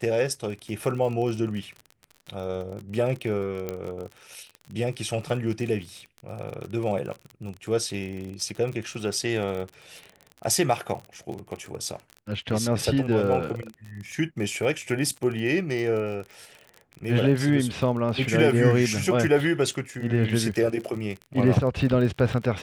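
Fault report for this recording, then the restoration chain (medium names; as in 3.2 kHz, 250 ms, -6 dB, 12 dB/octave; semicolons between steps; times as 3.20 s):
crackle 40 per s -32 dBFS
3.69 s: pop -16 dBFS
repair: de-click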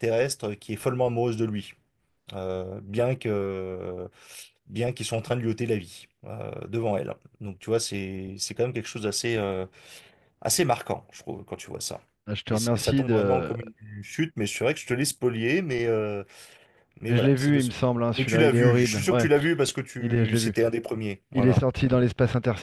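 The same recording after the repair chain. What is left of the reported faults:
nothing left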